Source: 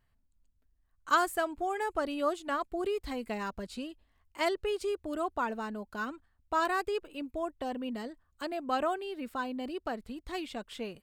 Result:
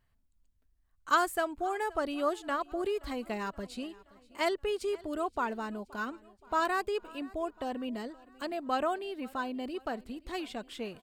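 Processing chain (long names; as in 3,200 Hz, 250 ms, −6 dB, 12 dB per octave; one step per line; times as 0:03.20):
repeating echo 524 ms, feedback 55%, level −22.5 dB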